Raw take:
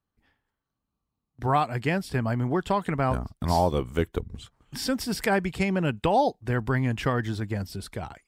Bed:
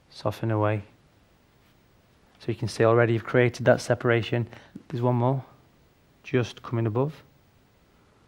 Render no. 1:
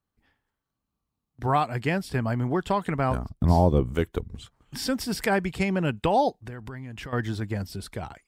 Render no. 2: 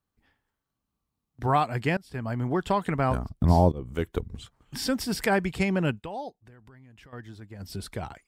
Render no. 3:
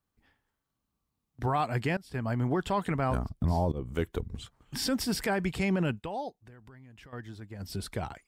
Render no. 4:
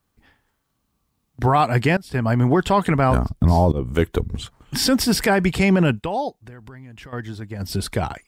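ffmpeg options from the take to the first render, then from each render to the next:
ffmpeg -i in.wav -filter_complex "[0:a]asettb=1/sr,asplit=3[link_01][link_02][link_03];[link_01]atrim=end=3.294[link_04];[link_02]atrim=start=3.29:end=3.95,asetpts=PTS-STARTPTS,afade=type=in:duration=0.004:curve=qsin,afade=type=out:start_time=0.656:duration=0.004:curve=qsin,tiltshelf=frequency=700:gain=7.5[link_05];[link_03]atrim=start=3.946[link_06];[link_04][link_05]acrossfade=duration=0.004:curve1=hsin:curve2=qsin[link_07];[link_07][link_06]acrossfade=duration=0.004:curve1=qsin:curve2=hsin,asettb=1/sr,asplit=3[link_08][link_09][link_10];[link_08]atrim=end=6.294[link_11];[link_09]atrim=start=6.29:end=7.13,asetpts=PTS-STARTPTS,afade=type=in:duration=0.004:curve=qsin,afade=type=out:start_time=0.836:duration=0.004:curve=qsin,acompressor=threshold=-34dB:ratio=12:attack=3.2:release=140:knee=1:detection=peak[link_12];[link_10]atrim=start=7.126[link_13];[link_11][link_12]acrossfade=duration=0.004:curve1=hsin:curve2=qsin[link_14];[link_14][link_13]acrossfade=duration=0.004:curve1=qsin:curve2=hsin" out.wav
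ffmpeg -i in.wav -filter_complex "[0:a]asplit=5[link_01][link_02][link_03][link_04][link_05];[link_01]atrim=end=1.97,asetpts=PTS-STARTPTS,afade=type=out:start_time=1.966:duration=0.004:curve=hsin:silence=0.0630957[link_06];[link_02]atrim=start=1.97:end=3.72,asetpts=PTS-STARTPTS,afade=type=in:duration=0.81:curve=qsin:silence=0.0630957,afade=type=out:start_time=1.746:duration=0.004:curve=hsin:silence=0.0630957[link_07];[link_03]atrim=start=3.72:end=6.04,asetpts=PTS-STARTPTS,afade=type=in:duration=0.44:silence=0.0630957,afade=type=out:start_time=2.19:duration=0.13:silence=0.199526[link_08];[link_04]atrim=start=6.04:end=7.58,asetpts=PTS-STARTPTS,volume=-14dB[link_09];[link_05]atrim=start=7.58,asetpts=PTS-STARTPTS,afade=type=in:duration=0.13:silence=0.199526[link_10];[link_06][link_07][link_08][link_09][link_10]concat=n=5:v=0:a=1" out.wav
ffmpeg -i in.wav -af "alimiter=limit=-19.5dB:level=0:latency=1:release=17" out.wav
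ffmpeg -i in.wav -af "volume=11.5dB" out.wav

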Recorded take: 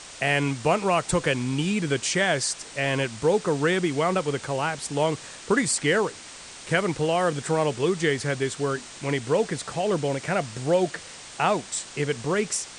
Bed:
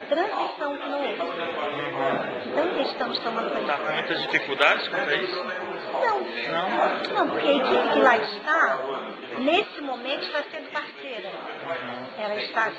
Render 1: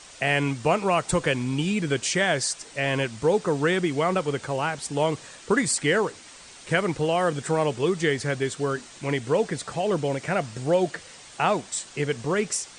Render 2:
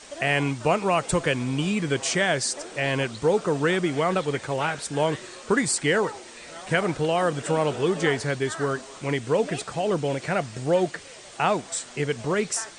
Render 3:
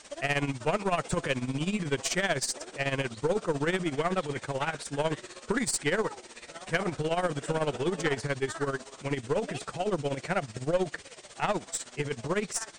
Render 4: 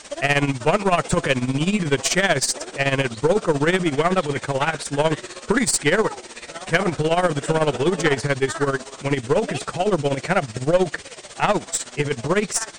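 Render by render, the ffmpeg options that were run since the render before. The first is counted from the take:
ffmpeg -i in.wav -af "afftdn=noise_reduction=6:noise_floor=-43" out.wav
ffmpeg -i in.wav -i bed.wav -filter_complex "[1:a]volume=-15.5dB[link_01];[0:a][link_01]amix=inputs=2:normalize=0" out.wav
ffmpeg -i in.wav -af "tremolo=f=16:d=0.78,aeval=exprs='(tanh(7.08*val(0)+0.35)-tanh(0.35))/7.08':channel_layout=same" out.wav
ffmpeg -i in.wav -af "volume=9.5dB" out.wav

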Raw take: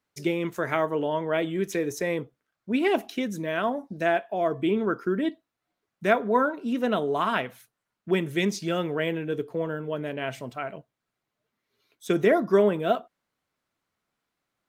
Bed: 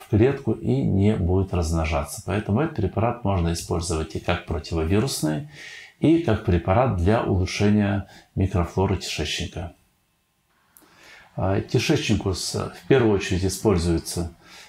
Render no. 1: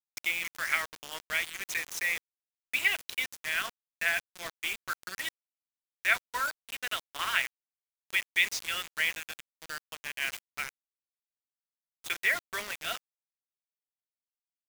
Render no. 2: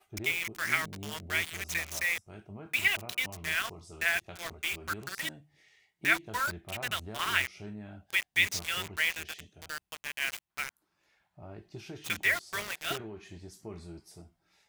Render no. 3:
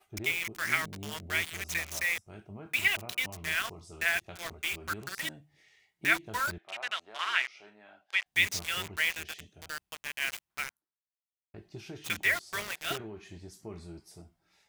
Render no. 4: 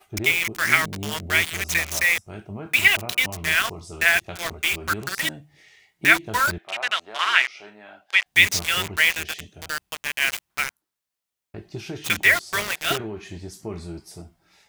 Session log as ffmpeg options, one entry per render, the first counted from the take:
ffmpeg -i in.wav -af "highpass=frequency=2100:width_type=q:width=2.1,acrusher=bits=5:mix=0:aa=0.000001" out.wav
ffmpeg -i in.wav -i bed.wav -filter_complex "[1:a]volume=-24dB[link_01];[0:a][link_01]amix=inputs=2:normalize=0" out.wav
ffmpeg -i in.wav -filter_complex "[0:a]asettb=1/sr,asplit=3[link_01][link_02][link_03];[link_01]atrim=end=6.584[link_04];[link_02]atrim=start=6.58:end=8.26,asetpts=PTS-STARTPTS,afade=type=in:duration=0.004:curve=qsin,afade=type=out:start_time=1.676:duration=0.004:curve=qsin,highpass=670,lowpass=5000[link_05];[link_03]atrim=start=8.256[link_06];[link_04][link_05]acrossfade=duration=0.004:curve1=hsin:curve2=qsin[link_07];[link_07][link_06]acrossfade=duration=0.004:curve1=qsin:curve2=hsin,asplit=2[link_08][link_09];[link_08]atrim=end=11.54,asetpts=PTS-STARTPTS,afade=type=out:start_time=10.68:duration=0.86:curve=exp[link_10];[link_09]atrim=start=11.54,asetpts=PTS-STARTPTS,afade=type=in:duration=0.004:curve=hsin[link_11];[link_10][link_11]concat=n=2:v=0:a=1" out.wav
ffmpeg -i in.wav -af "volume=10.5dB,alimiter=limit=-1dB:level=0:latency=1" out.wav

